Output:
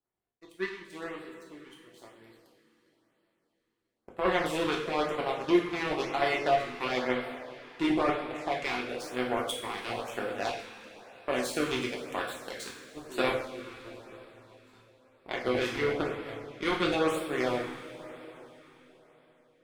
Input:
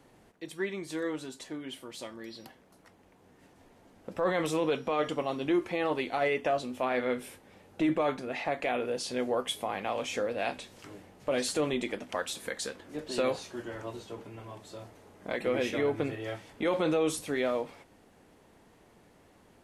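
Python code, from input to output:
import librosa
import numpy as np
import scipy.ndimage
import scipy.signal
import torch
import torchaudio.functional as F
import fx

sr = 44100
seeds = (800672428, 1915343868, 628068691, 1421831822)

y = fx.power_curve(x, sr, exponent=2.0)
y = fx.rev_double_slope(y, sr, seeds[0], early_s=0.55, late_s=4.2, knee_db=-16, drr_db=-2.0)
y = fx.filter_lfo_notch(y, sr, shape='sine', hz=1.0, low_hz=570.0, high_hz=6500.0, q=1.6)
y = F.gain(torch.from_numpy(y), 5.0).numpy()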